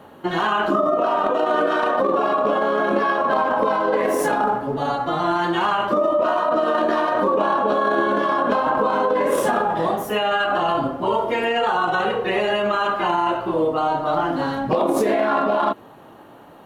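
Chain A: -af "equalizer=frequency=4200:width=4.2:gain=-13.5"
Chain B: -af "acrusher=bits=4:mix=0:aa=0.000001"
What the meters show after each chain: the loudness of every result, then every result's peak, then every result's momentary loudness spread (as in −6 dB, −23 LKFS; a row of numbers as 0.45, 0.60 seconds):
−20.5, −20.0 LKFS; −8.5, −9.5 dBFS; 3, 3 LU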